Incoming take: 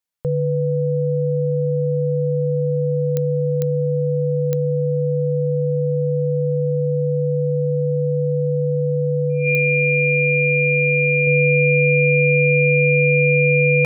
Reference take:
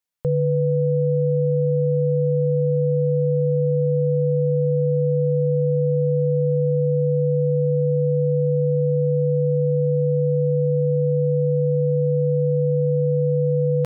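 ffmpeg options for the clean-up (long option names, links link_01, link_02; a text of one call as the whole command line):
ffmpeg -i in.wav -af "adeclick=threshold=4,bandreject=frequency=2400:width=30,asetnsamples=nb_out_samples=441:pad=0,asendcmd='11.27 volume volume -3dB',volume=0dB" out.wav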